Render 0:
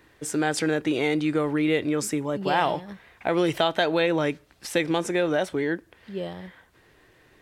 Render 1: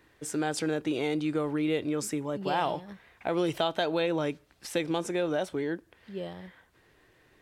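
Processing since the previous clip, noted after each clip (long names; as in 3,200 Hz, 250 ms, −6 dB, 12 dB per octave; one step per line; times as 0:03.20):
dynamic equaliser 1,900 Hz, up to −6 dB, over −42 dBFS, Q 2.5
level −5 dB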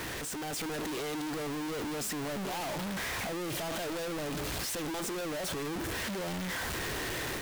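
sign of each sample alone
automatic gain control gain up to 3 dB
level −7 dB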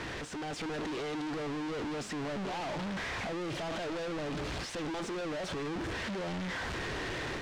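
high-frequency loss of the air 110 metres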